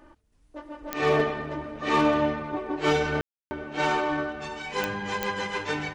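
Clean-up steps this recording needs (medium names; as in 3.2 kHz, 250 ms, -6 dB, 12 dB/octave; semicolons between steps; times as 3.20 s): clip repair -14.5 dBFS; de-click; room tone fill 3.21–3.51 s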